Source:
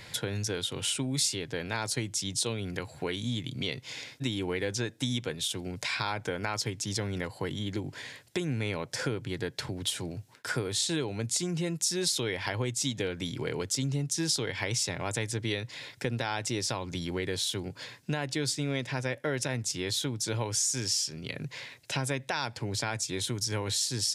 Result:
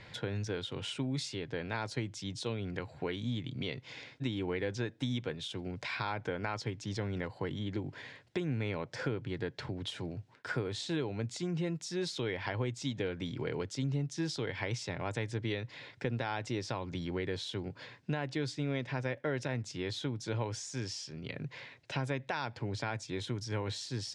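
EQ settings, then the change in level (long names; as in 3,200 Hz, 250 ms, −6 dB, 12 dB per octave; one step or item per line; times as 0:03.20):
high-frequency loss of the air 75 metres
high-shelf EQ 5,100 Hz −12 dB
−2.5 dB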